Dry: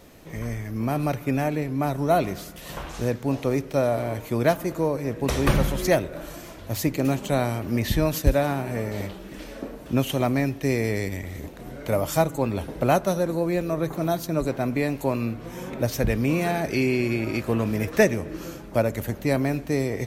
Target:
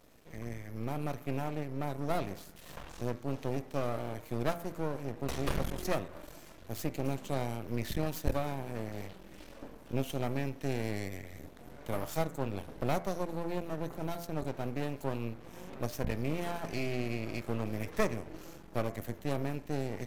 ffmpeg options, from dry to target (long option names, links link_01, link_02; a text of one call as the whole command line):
ffmpeg -i in.wav -af "aeval=exprs='max(val(0),0)':channel_layout=same,bandreject=frequency=85.39:width_type=h:width=4,bandreject=frequency=170.78:width_type=h:width=4,bandreject=frequency=256.17:width_type=h:width=4,bandreject=frequency=341.56:width_type=h:width=4,bandreject=frequency=426.95:width_type=h:width=4,bandreject=frequency=512.34:width_type=h:width=4,bandreject=frequency=597.73:width_type=h:width=4,bandreject=frequency=683.12:width_type=h:width=4,bandreject=frequency=768.51:width_type=h:width=4,bandreject=frequency=853.9:width_type=h:width=4,bandreject=frequency=939.29:width_type=h:width=4,bandreject=frequency=1024.68:width_type=h:width=4,bandreject=frequency=1110.07:width_type=h:width=4,bandreject=frequency=1195.46:width_type=h:width=4,bandreject=frequency=1280.85:width_type=h:width=4,bandreject=frequency=1366.24:width_type=h:width=4,bandreject=frequency=1451.63:width_type=h:width=4,bandreject=frequency=1537.02:width_type=h:width=4,bandreject=frequency=1622.41:width_type=h:width=4,bandreject=frequency=1707.8:width_type=h:width=4,bandreject=frequency=1793.19:width_type=h:width=4,bandreject=frequency=1878.58:width_type=h:width=4,bandreject=frequency=1963.97:width_type=h:width=4,bandreject=frequency=2049.36:width_type=h:width=4,bandreject=frequency=2134.75:width_type=h:width=4,bandreject=frequency=2220.14:width_type=h:width=4,bandreject=frequency=2305.53:width_type=h:width=4,volume=-8dB" out.wav